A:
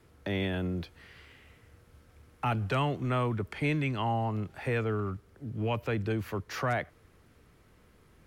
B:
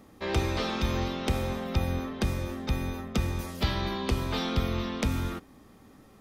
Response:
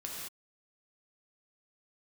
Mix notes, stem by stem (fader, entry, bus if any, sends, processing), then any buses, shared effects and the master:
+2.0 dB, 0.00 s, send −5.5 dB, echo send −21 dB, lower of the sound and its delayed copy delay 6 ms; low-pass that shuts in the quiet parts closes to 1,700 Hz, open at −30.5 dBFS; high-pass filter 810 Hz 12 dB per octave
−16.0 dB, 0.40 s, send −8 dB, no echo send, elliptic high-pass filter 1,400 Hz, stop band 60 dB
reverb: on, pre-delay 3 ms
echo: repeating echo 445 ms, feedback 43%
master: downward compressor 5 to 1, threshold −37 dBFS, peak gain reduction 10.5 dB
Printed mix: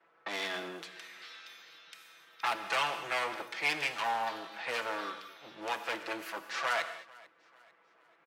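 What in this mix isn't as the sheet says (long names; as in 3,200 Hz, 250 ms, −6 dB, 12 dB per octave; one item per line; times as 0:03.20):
stem B: entry 0.40 s → 0.65 s
master: missing downward compressor 5 to 1, threshold −37 dBFS, peak gain reduction 10.5 dB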